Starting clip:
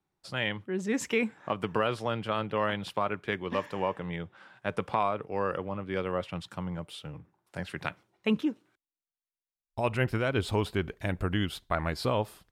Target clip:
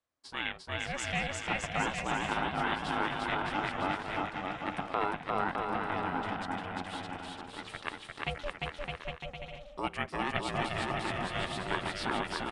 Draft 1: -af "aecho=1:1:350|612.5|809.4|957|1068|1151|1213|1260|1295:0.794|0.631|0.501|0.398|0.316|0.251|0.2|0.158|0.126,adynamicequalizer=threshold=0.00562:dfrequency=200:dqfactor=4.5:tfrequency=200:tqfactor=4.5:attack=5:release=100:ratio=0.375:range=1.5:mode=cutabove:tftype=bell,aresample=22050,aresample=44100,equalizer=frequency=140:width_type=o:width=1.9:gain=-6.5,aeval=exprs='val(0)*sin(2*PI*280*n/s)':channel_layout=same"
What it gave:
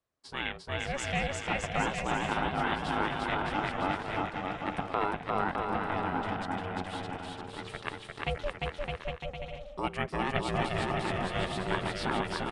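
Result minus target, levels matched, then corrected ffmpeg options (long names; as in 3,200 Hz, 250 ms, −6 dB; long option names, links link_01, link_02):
125 Hz band +2.5 dB
-af "aecho=1:1:350|612.5|809.4|957|1068|1151|1213|1260|1295:0.794|0.631|0.501|0.398|0.316|0.251|0.2|0.158|0.126,adynamicequalizer=threshold=0.00562:dfrequency=200:dqfactor=4.5:tfrequency=200:tqfactor=4.5:attack=5:release=100:ratio=0.375:range=1.5:mode=cutabove:tftype=bell,aresample=22050,aresample=44100,equalizer=frequency=140:width_type=o:width=1.9:gain=-17,aeval=exprs='val(0)*sin(2*PI*280*n/s)':channel_layout=same"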